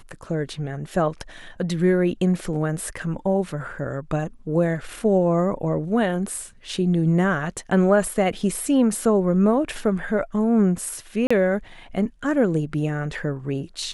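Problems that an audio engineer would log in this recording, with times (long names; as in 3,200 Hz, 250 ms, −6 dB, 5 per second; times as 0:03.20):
0:11.27–0:11.30: drop-out 35 ms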